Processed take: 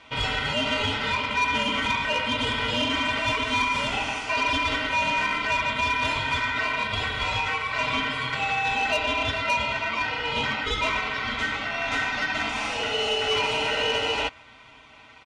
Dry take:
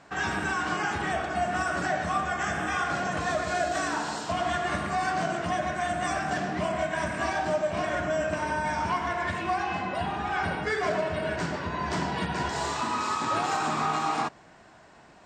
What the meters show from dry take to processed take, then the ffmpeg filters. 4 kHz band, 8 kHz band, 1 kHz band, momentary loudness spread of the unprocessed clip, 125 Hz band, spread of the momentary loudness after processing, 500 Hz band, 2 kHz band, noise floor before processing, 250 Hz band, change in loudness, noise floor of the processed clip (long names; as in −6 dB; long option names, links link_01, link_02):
+12.5 dB, −0.5 dB, +0.5 dB, 3 LU, −0.5 dB, 3 LU, −1.0 dB, +6.0 dB, −53 dBFS, −0.5 dB, +4.0 dB, −50 dBFS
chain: -af "highpass=110,lowpass=4200,aecho=1:1:5.6:0.82,aeval=exprs='val(0)*sin(2*PI*1700*n/s)':channel_layout=same,aeval=exprs='0.237*(cos(1*acos(clip(val(0)/0.237,-1,1)))-cos(1*PI/2))+0.0335*(cos(5*acos(clip(val(0)/0.237,-1,1)))-cos(5*PI/2))':channel_layout=same"